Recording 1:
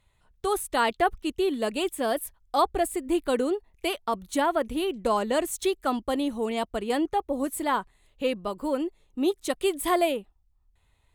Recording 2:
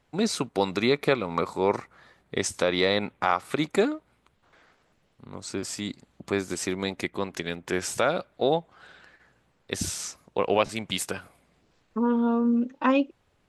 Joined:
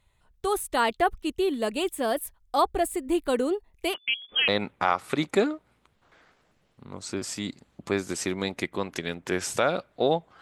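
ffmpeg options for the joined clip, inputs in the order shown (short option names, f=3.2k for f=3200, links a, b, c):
-filter_complex "[0:a]asettb=1/sr,asplit=3[a][b][c];[a]atrim=end=3.944[d];[b]atrim=start=3.94:end=4.48,asetpts=PTS-STARTPTS,afade=t=in:d=0.004:c=qsin,afade=t=out:st=0.536:d=0.004:c=qsin,lowpass=f=3k:t=q:w=0.5098,lowpass=f=3k:t=q:w=0.6013,lowpass=f=3k:t=q:w=0.9,lowpass=f=3k:t=q:w=2.563,afreqshift=-3500[e];[c]atrim=start=4.476[f];[d][e]acrossfade=d=0.004:c1=hsin:c2=qsin[g];[g][f]acrossfade=d=0.004:c1=qsin:c2=hsin,apad=whole_dur=10.41,atrim=end=10.41,atrim=end=4.482[h];[1:a]atrim=start=2.888:end=8.82[i];[h][i]acrossfade=d=0.004:c1=hsin:c2=hsin"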